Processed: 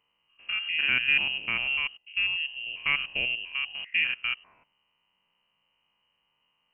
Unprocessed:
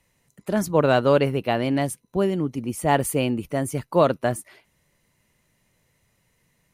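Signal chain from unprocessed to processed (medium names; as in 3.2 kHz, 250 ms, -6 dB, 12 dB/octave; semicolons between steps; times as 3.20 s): spectrogram pixelated in time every 100 ms; frequency inversion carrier 3 kHz; trim -5.5 dB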